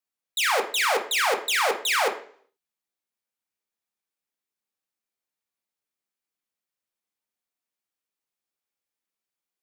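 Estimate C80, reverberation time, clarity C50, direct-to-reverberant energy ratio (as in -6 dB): 14.5 dB, 0.50 s, 10.0 dB, 2.0 dB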